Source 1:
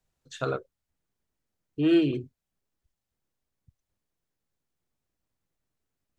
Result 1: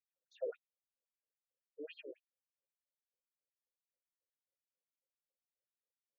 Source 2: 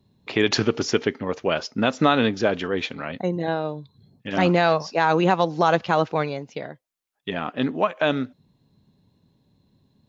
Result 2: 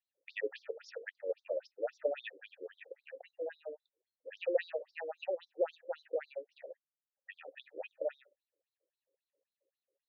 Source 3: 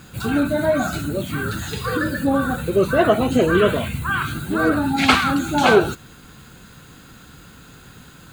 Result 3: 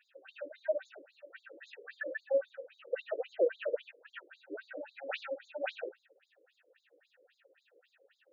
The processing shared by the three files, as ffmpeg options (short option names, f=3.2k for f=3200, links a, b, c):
-filter_complex "[0:a]asplit=3[a][b][c];[a]bandpass=f=530:t=q:w=8,volume=0dB[d];[b]bandpass=f=1.84k:t=q:w=8,volume=-6dB[e];[c]bandpass=f=2.48k:t=q:w=8,volume=-9dB[f];[d][e][f]amix=inputs=3:normalize=0,afftfilt=real='re*between(b*sr/1024,400*pow(5200/400,0.5+0.5*sin(2*PI*3.7*pts/sr))/1.41,400*pow(5200/400,0.5+0.5*sin(2*PI*3.7*pts/sr))*1.41)':imag='im*between(b*sr/1024,400*pow(5200/400,0.5+0.5*sin(2*PI*3.7*pts/sr))/1.41,400*pow(5200/400,0.5+0.5*sin(2*PI*3.7*pts/sr))*1.41)':win_size=1024:overlap=0.75,volume=-1dB"